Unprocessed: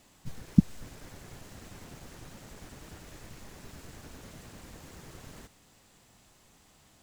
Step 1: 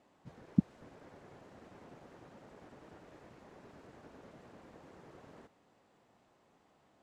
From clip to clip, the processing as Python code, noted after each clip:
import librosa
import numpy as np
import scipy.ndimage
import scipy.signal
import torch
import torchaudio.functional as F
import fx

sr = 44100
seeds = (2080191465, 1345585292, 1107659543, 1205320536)

y = fx.bandpass_q(x, sr, hz=560.0, q=0.68)
y = y * librosa.db_to_amplitude(-1.5)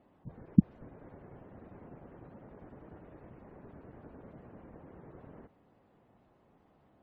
y = fx.spec_gate(x, sr, threshold_db=-25, keep='strong')
y = fx.tilt_eq(y, sr, slope=-2.5)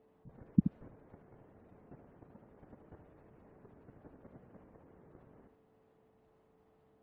y = fx.level_steps(x, sr, step_db=10)
y = y + 10.0 ** (-65.0 / 20.0) * np.sin(2.0 * np.pi * 440.0 * np.arange(len(y)) / sr)
y = y + 10.0 ** (-8.0 / 20.0) * np.pad(y, (int(76 * sr / 1000.0), 0))[:len(y)]
y = y * librosa.db_to_amplitude(-1.5)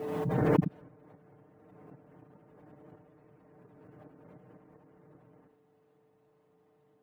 y = scipy.signal.sosfilt(scipy.signal.butter(2, 82.0, 'highpass', fs=sr, output='sos'), x)
y = y + 0.73 * np.pad(y, (int(6.6 * sr / 1000.0), 0))[:len(y)]
y = fx.pre_swell(y, sr, db_per_s=27.0)
y = y * librosa.db_to_amplitude(-2.0)